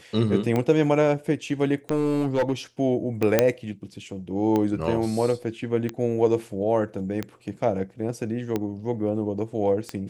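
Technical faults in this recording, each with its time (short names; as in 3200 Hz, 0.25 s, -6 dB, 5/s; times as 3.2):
tick 45 rpm -13 dBFS
1.91–2.53 clipped -17.5 dBFS
3.39 pop -3 dBFS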